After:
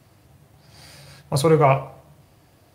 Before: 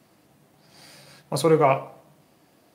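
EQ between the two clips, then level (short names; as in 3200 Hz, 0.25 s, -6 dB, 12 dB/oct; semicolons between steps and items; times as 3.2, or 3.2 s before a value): resonant low shelf 140 Hz +12.5 dB, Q 1.5; +2.5 dB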